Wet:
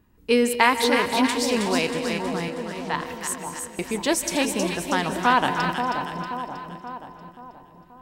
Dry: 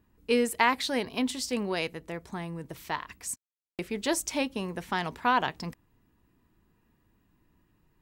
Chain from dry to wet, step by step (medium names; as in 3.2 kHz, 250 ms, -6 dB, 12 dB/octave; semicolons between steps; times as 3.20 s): chunks repeated in reverse 212 ms, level -13.5 dB; 2.48–2.94 s: band-pass 590–5500 Hz; two-band feedback delay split 1 kHz, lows 530 ms, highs 318 ms, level -5 dB; reverberation RT60 1.0 s, pre-delay 138 ms, DRR 13 dB; trim +5.5 dB